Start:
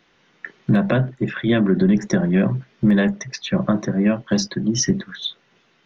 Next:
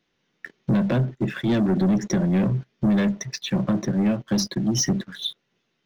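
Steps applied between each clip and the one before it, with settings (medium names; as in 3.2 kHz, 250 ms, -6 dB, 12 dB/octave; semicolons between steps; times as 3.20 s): peaking EQ 1.2 kHz -6.5 dB 2.3 oct; waveshaping leveller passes 2; trim -6.5 dB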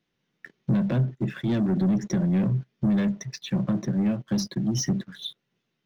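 peaking EQ 140 Hz +6 dB 1.5 oct; trim -6.5 dB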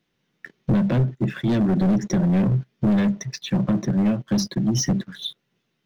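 one-sided wavefolder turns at -20 dBFS; trim +4.5 dB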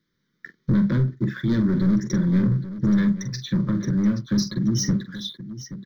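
static phaser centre 2.7 kHz, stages 6; on a send: multi-tap echo 44/827 ms -10.5/-13.5 dB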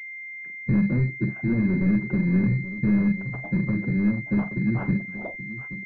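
coarse spectral quantiser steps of 15 dB; class-D stage that switches slowly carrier 2.1 kHz; trim -1.5 dB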